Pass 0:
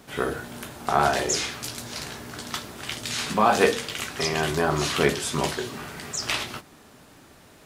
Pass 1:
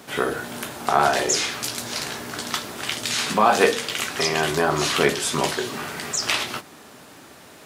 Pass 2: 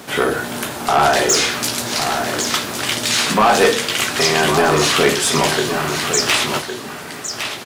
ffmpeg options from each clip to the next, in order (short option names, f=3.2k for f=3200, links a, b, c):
-filter_complex "[0:a]highpass=55,lowshelf=f=140:g=-11,asplit=2[a][b];[b]acompressor=threshold=-31dB:ratio=6,volume=-1dB[c];[a][c]amix=inputs=2:normalize=0,volume=1.5dB"
-filter_complex "[0:a]asoftclip=type=tanh:threshold=-15dB,asplit=2[a][b];[b]aecho=0:1:1109:0.398[c];[a][c]amix=inputs=2:normalize=0,volume=8dB"